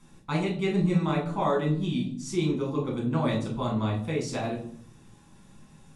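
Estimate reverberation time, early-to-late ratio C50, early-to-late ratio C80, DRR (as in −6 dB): 0.65 s, 7.0 dB, 11.5 dB, −3.5 dB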